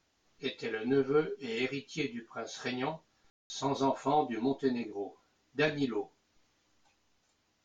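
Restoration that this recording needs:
ambience match 0:03.30–0:03.50

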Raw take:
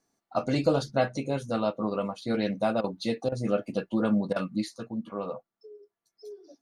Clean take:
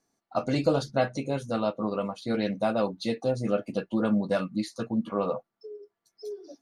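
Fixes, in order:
repair the gap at 0:02.81/0:03.29/0:04.33, 29 ms
level correction +6 dB, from 0:04.76

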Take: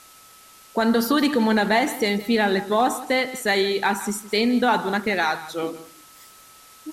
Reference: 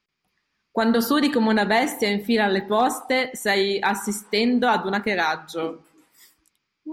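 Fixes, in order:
notch filter 1,300 Hz, Q 30
noise reduction from a noise print 26 dB
echo removal 165 ms −16 dB

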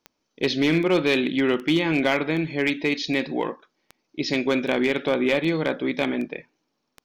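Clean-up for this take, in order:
clipped peaks rebuilt −13 dBFS
click removal

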